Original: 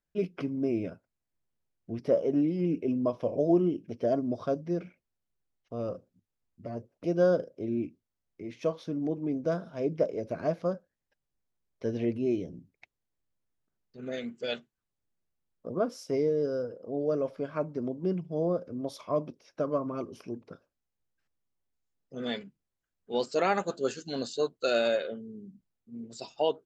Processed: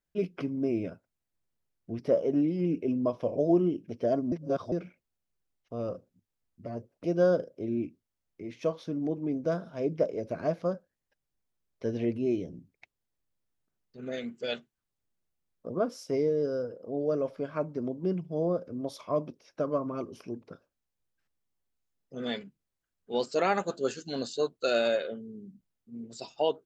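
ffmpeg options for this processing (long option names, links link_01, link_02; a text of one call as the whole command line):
ffmpeg -i in.wav -filter_complex "[0:a]asplit=3[link_01][link_02][link_03];[link_01]atrim=end=4.322[link_04];[link_02]atrim=start=4.318:end=4.722,asetpts=PTS-STARTPTS,areverse[link_05];[link_03]atrim=start=4.718[link_06];[link_04][link_05]acrossfade=duration=0.004:curve1=hsin:curve2=hsin[link_07];[link_07][link_06]acrossfade=duration=0.004:curve1=hsin:curve2=hsin" out.wav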